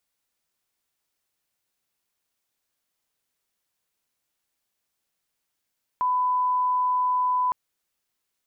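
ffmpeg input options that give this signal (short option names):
-f lavfi -i "sine=f=1000:d=1.51:r=44100,volume=-1.94dB"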